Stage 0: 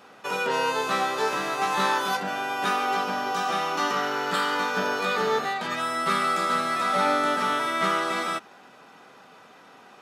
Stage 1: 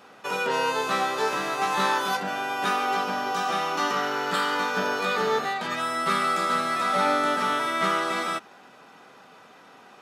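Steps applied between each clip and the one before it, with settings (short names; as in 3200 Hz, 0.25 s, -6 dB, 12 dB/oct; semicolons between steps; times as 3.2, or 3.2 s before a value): nothing audible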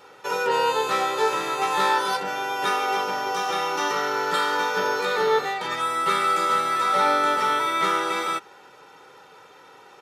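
comb 2.2 ms, depth 71%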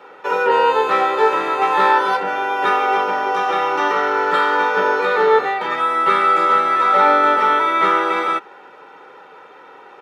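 three-band isolator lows -20 dB, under 180 Hz, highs -18 dB, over 2900 Hz; gain +7.5 dB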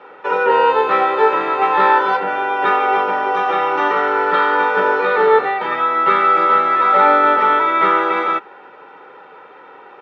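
LPF 3200 Hz 12 dB/oct; gain +1.5 dB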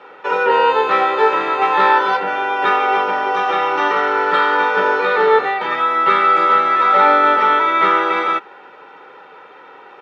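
high shelf 3300 Hz +9.5 dB; gain -1 dB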